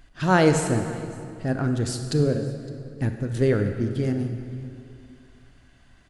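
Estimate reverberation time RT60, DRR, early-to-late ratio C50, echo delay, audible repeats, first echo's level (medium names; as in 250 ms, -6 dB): 2.5 s, 6.0 dB, 6.5 dB, 562 ms, 1, -23.0 dB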